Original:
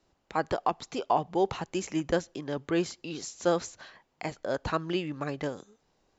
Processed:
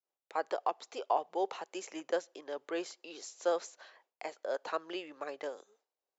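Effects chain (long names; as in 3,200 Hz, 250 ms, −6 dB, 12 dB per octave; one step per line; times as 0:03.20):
downward expander −59 dBFS
four-pole ladder high-pass 380 Hz, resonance 30%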